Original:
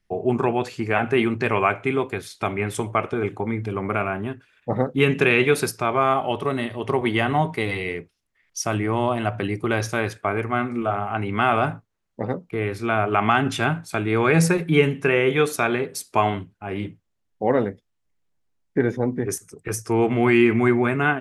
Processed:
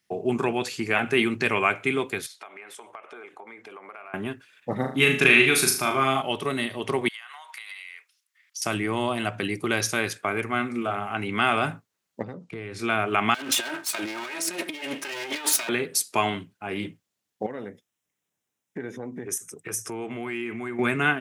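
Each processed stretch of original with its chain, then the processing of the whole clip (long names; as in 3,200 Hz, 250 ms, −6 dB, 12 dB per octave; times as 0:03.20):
0:02.26–0:04.14: high-pass filter 650 Hz + downward compressor, threshold −38 dBFS + high-shelf EQ 2,800 Hz −11.5 dB
0:04.77–0:06.22: notch filter 470 Hz, Q 5 + flutter between parallel walls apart 6.5 metres, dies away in 0.42 s
0:07.08–0:08.62: inverse Chebyshev high-pass filter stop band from 180 Hz, stop band 80 dB + downward compressor 20 to 1, threshold −39 dBFS
0:12.22–0:12.79: low-pass filter 8,800 Hz 24 dB per octave + downward compressor 5 to 1, threshold −34 dBFS + low-shelf EQ 170 Hz +11 dB
0:13.34–0:15.69: lower of the sound and its delayed copy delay 3.2 ms + high-pass filter 460 Hz 6 dB per octave + compressor whose output falls as the input rises −33 dBFS
0:17.46–0:20.79: parametric band 4,500 Hz −13.5 dB 0.22 octaves + downward compressor 3 to 1, threshold −32 dBFS
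whole clip: dynamic equaliser 780 Hz, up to −5 dB, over −32 dBFS, Q 0.72; high-pass filter 150 Hz 12 dB per octave; high-shelf EQ 2,300 Hz +10 dB; level −1.5 dB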